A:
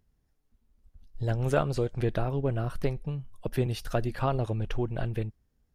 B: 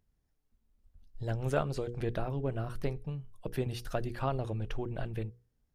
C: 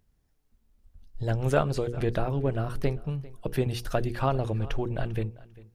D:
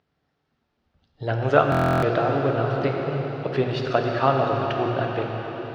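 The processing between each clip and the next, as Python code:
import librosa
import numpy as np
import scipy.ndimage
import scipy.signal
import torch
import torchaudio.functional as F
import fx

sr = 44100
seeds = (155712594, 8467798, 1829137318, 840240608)

y1 = fx.hum_notches(x, sr, base_hz=60, count=8)
y1 = F.gain(torch.from_numpy(y1), -4.5).numpy()
y2 = fx.echo_feedback(y1, sr, ms=397, feedback_pct=17, wet_db=-20.5)
y2 = F.gain(torch.from_numpy(y2), 6.5).numpy()
y3 = fx.cabinet(y2, sr, low_hz=170.0, low_slope=12, high_hz=4500.0, hz=(210.0, 740.0, 1300.0), db=(-7, 3, 5))
y3 = fx.rev_plate(y3, sr, seeds[0], rt60_s=5.0, hf_ratio=1.0, predelay_ms=0, drr_db=0.5)
y3 = fx.buffer_glitch(y3, sr, at_s=(1.7,), block=1024, repeats=13)
y3 = F.gain(torch.from_numpy(y3), 5.0).numpy()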